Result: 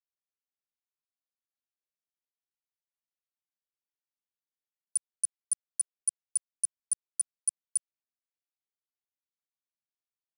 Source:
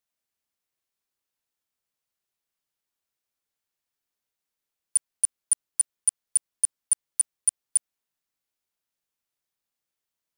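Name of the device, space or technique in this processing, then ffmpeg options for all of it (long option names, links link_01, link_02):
over-cleaned archive recording: -af "highpass=120,lowpass=7400,afwtdn=0.00501"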